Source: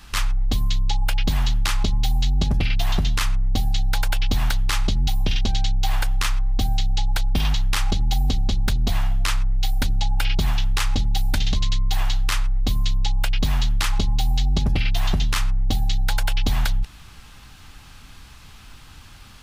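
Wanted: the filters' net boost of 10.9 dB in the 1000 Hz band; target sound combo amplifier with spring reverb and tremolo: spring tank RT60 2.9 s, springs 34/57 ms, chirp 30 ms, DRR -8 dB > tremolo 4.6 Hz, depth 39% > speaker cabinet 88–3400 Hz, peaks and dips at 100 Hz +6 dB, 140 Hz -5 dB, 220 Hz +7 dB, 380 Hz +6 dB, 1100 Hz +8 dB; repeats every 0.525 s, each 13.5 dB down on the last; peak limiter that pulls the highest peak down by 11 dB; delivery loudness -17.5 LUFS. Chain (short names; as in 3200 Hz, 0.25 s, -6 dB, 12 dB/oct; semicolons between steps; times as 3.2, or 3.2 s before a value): bell 1000 Hz +9 dB; limiter -18.5 dBFS; feedback echo 0.525 s, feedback 21%, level -13.5 dB; spring tank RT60 2.9 s, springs 34/57 ms, chirp 30 ms, DRR -8 dB; tremolo 4.6 Hz, depth 39%; speaker cabinet 88–3400 Hz, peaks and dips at 100 Hz +6 dB, 140 Hz -5 dB, 220 Hz +7 dB, 380 Hz +6 dB, 1100 Hz +8 dB; gain +7 dB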